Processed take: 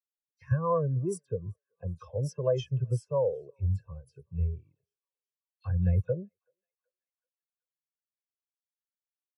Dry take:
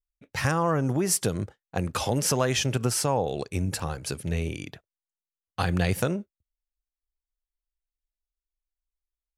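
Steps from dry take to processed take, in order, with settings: comb 1.9 ms, depth 44%; dispersion lows, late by 70 ms, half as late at 2900 Hz; on a send: thinning echo 0.381 s, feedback 80%, high-pass 480 Hz, level -15.5 dB; on the sum: spectral expander 2.5:1; gain -6.5 dB

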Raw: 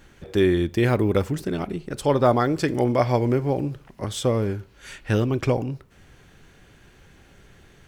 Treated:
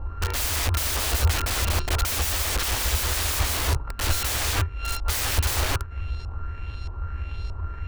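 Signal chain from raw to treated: sample sorter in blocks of 32 samples; LFO low-pass saw up 1.6 Hz 840–5200 Hz; wrapped overs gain 30.5 dB; resonant low shelf 110 Hz +12.5 dB, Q 3; gain +8.5 dB

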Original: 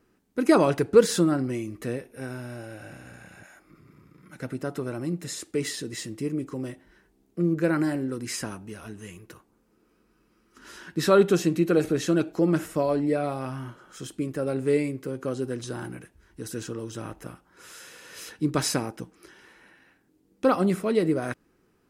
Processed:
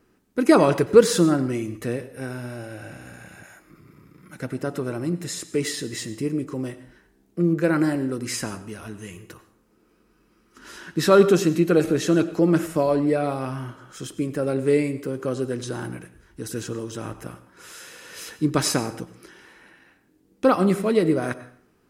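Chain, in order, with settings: 3.01–4.42 high shelf 11000 Hz +6 dB; plate-style reverb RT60 0.54 s, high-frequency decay 0.9×, pre-delay 80 ms, DRR 14 dB; gain +3.5 dB

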